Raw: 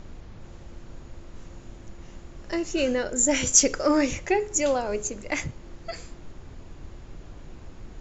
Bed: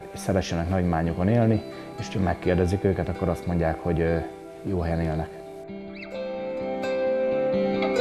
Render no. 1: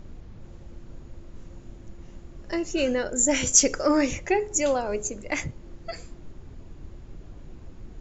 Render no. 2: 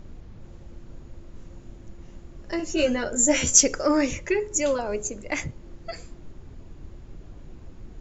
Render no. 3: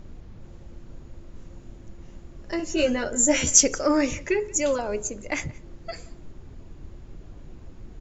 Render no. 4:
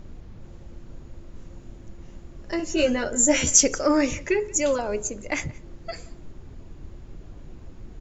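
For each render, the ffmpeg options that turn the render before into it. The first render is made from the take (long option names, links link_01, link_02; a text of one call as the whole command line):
ffmpeg -i in.wav -af "afftdn=noise_reduction=6:noise_floor=-46" out.wav
ffmpeg -i in.wav -filter_complex "[0:a]asettb=1/sr,asplit=3[link_01][link_02][link_03];[link_01]atrim=end=2.584[link_04];[link_02]atrim=start=2.58:end=3.61,asetpts=PTS-STARTPTS,afade=type=in:duration=0.004:curve=qsin,afade=type=out:start_time=1.026:duration=0.004:curve=qsin,asplit=2[link_05][link_06];[link_06]adelay=13,volume=-2.5dB[link_07];[link_05][link_07]amix=inputs=2:normalize=0,atrim=end_sample=45423[link_08];[link_03]atrim=start=3.606[link_09];[link_04][link_08]acrossfade=duration=0.004:curve1=hsin:curve2=qsin[link_10];[link_10][link_09]acrossfade=duration=0.004:curve1=qsin:curve2=hsin,asettb=1/sr,asplit=3[link_11][link_12][link_13];[link_11]atrim=end=4.124[link_14];[link_12]atrim=start=4.12:end=4.79,asetpts=PTS-STARTPTS,afade=type=in:duration=0.004:curve=qsin,afade=type=out:start_time=0.666:duration=0.004:curve=qsin,asuperstop=centerf=760:order=8:qfactor=4.7[link_15];[link_13]atrim=start=4.786[link_16];[link_14][link_15]acrossfade=duration=0.004:curve1=hsin:curve2=qsin[link_17];[link_17][link_16]acrossfade=duration=0.004:curve1=qsin:curve2=hsin" out.wav
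ffmpeg -i in.wav -af "aecho=1:1:176:0.0668" out.wav
ffmpeg -i in.wav -af "volume=1dB,alimiter=limit=-3dB:level=0:latency=1" out.wav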